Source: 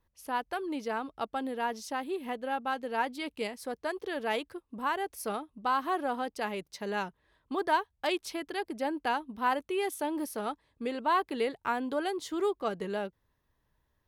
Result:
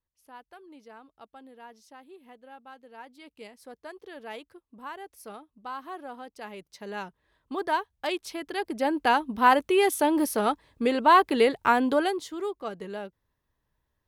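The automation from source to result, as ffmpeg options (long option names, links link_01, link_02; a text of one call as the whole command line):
ffmpeg -i in.wav -af "volume=9.5dB,afade=type=in:start_time=3.01:duration=0.7:silence=0.473151,afade=type=in:start_time=6.3:duration=1.33:silence=0.354813,afade=type=in:start_time=8.35:duration=1.01:silence=0.354813,afade=type=out:start_time=11.88:duration=0.43:silence=0.251189" out.wav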